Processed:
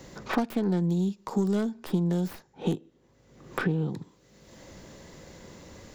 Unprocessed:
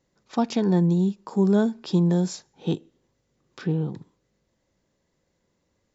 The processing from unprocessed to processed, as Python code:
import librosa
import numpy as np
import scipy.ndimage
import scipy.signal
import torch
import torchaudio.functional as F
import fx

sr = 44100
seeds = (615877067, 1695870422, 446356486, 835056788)

y = fx.tracing_dist(x, sr, depth_ms=0.26)
y = fx.band_squash(y, sr, depth_pct=100)
y = y * 10.0 ** (-5.0 / 20.0)